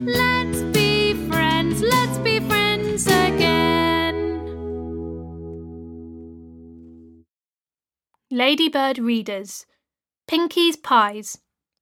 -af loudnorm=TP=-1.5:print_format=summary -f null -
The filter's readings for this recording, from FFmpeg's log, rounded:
Input Integrated:    -19.8 LUFS
Input True Peak:      -2.6 dBTP
Input LRA:            10.8 LU
Input Threshold:     -31.3 LUFS